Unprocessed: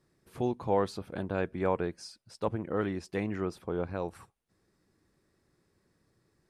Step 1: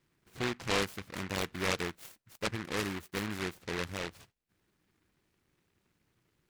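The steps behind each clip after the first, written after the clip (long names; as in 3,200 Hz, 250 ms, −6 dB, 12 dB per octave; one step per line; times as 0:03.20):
short delay modulated by noise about 1,600 Hz, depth 0.31 ms
level −3.5 dB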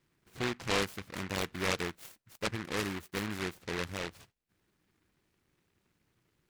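no processing that can be heard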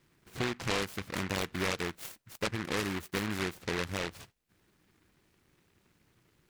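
downward compressor 3 to 1, threshold −37 dBFS, peak gain reduction 9 dB
level +6.5 dB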